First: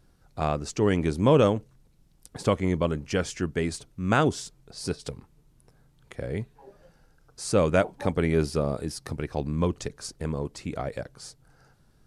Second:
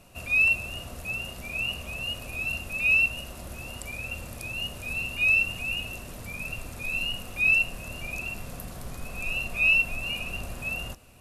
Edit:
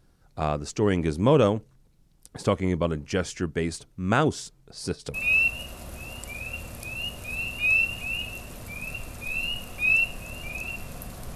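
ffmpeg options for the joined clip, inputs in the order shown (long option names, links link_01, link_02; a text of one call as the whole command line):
ffmpeg -i cue0.wav -i cue1.wav -filter_complex "[0:a]apad=whole_dur=11.35,atrim=end=11.35,atrim=end=5.142[link_01];[1:a]atrim=start=2.718:end=8.93[link_02];[link_01][link_02]acrossfade=duration=0.004:curve1=hsin:curve2=hsin" out.wav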